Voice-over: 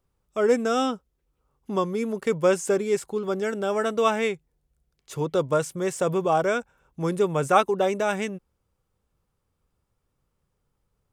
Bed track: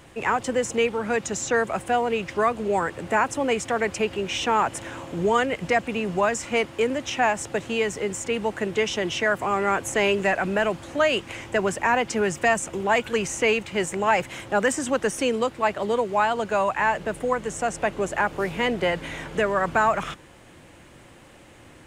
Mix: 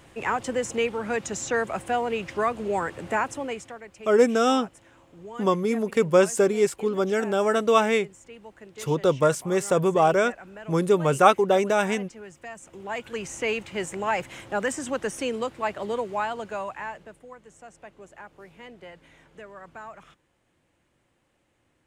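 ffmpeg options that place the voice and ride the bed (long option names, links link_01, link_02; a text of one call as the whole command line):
ffmpeg -i stem1.wav -i stem2.wav -filter_complex "[0:a]adelay=3700,volume=2.5dB[link_01];[1:a]volume=11.5dB,afade=type=out:start_time=3.12:duration=0.68:silence=0.149624,afade=type=in:start_time=12.53:duration=1.05:silence=0.188365,afade=type=out:start_time=16.02:duration=1.19:silence=0.158489[link_02];[link_01][link_02]amix=inputs=2:normalize=0" out.wav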